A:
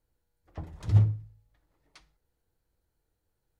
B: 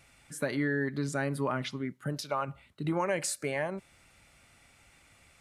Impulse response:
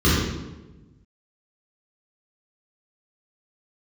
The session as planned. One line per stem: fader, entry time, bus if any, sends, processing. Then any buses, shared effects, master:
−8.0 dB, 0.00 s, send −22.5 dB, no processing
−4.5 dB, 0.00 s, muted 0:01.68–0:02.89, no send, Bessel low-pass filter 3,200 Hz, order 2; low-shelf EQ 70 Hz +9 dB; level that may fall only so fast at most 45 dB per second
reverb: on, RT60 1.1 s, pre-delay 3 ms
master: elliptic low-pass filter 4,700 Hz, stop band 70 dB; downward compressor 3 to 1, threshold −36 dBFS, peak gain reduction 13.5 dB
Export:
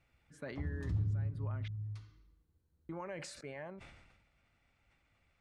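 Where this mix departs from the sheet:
stem B −4.5 dB → −14.0 dB
master: missing elliptic low-pass filter 4,700 Hz, stop band 70 dB

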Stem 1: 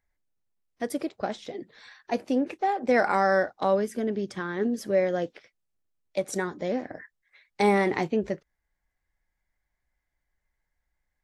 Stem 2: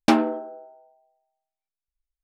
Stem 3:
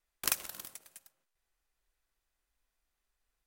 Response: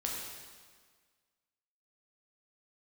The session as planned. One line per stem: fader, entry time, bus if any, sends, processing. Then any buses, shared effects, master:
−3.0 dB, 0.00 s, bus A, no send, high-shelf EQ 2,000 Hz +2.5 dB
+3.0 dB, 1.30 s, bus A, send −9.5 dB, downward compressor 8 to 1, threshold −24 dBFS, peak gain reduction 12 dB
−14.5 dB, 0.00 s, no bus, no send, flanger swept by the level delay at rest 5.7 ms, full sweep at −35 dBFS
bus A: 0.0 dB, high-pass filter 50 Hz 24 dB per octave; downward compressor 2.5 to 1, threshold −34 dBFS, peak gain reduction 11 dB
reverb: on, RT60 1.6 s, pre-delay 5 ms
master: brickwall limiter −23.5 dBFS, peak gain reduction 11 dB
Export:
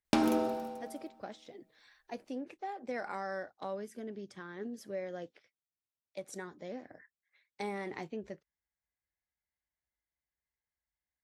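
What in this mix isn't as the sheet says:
stem 1 −3.0 dB → −14.5 dB
stem 2: entry 1.30 s → 0.05 s
master: missing brickwall limiter −23.5 dBFS, peak gain reduction 11 dB

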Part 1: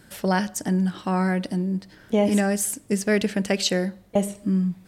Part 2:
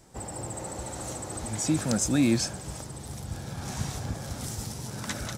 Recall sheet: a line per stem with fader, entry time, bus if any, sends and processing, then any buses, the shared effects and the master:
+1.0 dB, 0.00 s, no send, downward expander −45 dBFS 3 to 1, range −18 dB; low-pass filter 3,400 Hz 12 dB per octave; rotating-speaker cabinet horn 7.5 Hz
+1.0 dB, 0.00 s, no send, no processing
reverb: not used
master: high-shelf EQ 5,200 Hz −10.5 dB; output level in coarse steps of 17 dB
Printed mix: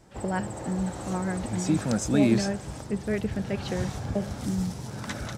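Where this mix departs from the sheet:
stem 1 +1.0 dB → −5.5 dB
master: missing output level in coarse steps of 17 dB

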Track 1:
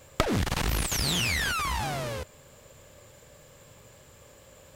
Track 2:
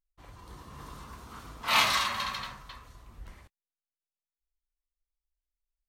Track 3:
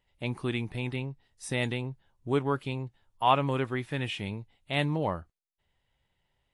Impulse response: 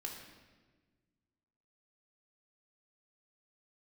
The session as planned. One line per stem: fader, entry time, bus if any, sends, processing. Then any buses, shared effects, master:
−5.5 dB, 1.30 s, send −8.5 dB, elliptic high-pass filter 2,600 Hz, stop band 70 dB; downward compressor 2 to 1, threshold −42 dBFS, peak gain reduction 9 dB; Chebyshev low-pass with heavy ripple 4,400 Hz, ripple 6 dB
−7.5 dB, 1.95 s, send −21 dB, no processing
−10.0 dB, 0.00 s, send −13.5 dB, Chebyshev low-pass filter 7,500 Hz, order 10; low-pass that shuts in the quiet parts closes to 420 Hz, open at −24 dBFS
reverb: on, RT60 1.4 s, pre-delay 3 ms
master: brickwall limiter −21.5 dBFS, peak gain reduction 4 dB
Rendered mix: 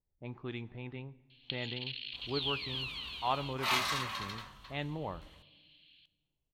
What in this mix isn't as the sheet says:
stem 1 −5.5 dB → +4.0 dB
master: missing brickwall limiter −21.5 dBFS, peak gain reduction 4 dB

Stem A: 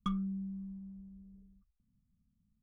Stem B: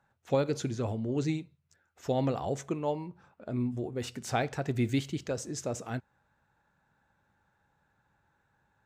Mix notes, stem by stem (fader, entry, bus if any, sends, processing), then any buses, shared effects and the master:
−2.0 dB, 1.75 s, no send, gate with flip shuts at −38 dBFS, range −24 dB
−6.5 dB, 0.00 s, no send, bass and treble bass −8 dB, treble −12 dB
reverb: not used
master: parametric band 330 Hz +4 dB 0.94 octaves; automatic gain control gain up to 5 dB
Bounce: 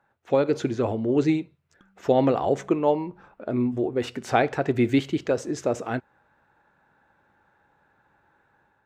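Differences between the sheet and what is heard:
stem A −2.0 dB → −11.0 dB
stem B −6.5 dB → +4.5 dB

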